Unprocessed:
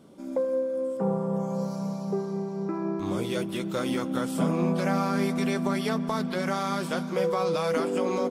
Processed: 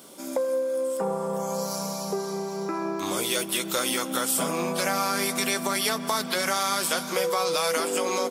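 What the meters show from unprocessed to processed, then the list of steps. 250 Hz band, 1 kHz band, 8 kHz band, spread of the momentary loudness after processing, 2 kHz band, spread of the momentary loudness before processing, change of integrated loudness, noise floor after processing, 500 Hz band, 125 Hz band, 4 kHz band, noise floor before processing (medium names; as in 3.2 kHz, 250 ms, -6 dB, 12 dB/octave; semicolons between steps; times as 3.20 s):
-5.0 dB, +3.5 dB, +16.5 dB, 6 LU, +6.5 dB, 5 LU, +2.0 dB, -34 dBFS, +0.5 dB, -8.0 dB, +11.0 dB, -34 dBFS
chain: RIAA curve recording; compression 2:1, threshold -34 dBFS, peak gain reduction 6 dB; bass shelf 310 Hz -5.5 dB; trim +9 dB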